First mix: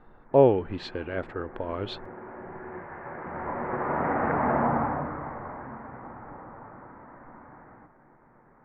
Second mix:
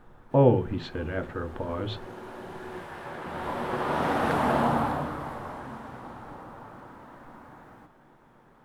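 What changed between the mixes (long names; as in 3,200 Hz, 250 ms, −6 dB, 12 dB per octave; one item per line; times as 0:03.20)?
speech: send on
background: remove elliptic low-pass filter 2,100 Hz, stop band 50 dB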